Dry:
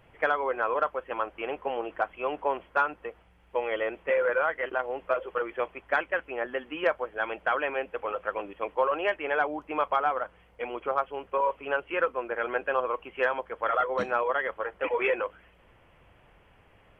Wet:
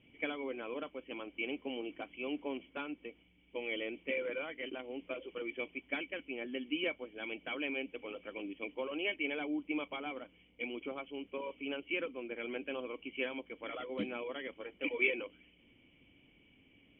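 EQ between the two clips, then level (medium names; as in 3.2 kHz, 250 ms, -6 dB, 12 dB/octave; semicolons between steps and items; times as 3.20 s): cascade formant filter i; tilt EQ +2.5 dB/octave; +10.5 dB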